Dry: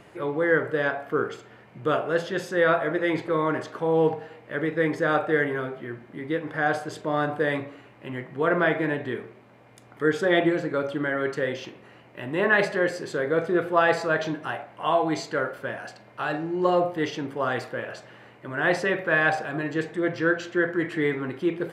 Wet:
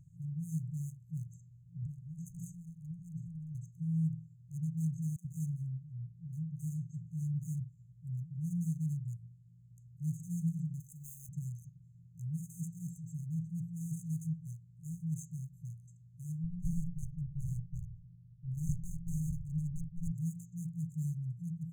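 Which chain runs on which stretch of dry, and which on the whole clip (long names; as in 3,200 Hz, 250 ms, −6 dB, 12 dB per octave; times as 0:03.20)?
0:01.82–0:03.55: transient designer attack −9 dB, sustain +4 dB + double-tracking delay 40 ms −13 dB + downward compressor 10 to 1, threshold −28 dBFS
0:05.16–0:07.60: one scale factor per block 7 bits + low-pass filter 4,400 Hz + all-pass dispersion lows, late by 88 ms, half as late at 780 Hz
0:10.80–0:11.29: spectral tilt +4.5 dB per octave + noise that follows the level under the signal 21 dB
0:16.44–0:20.11: lower of the sound and its delayed copy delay 0.67 ms + low-pass filter 2,700 Hz 24 dB per octave + highs frequency-modulated by the lows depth 0.99 ms
whole clip: adaptive Wiener filter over 9 samples; brick-wall band-stop 180–6,200 Hz; level +1.5 dB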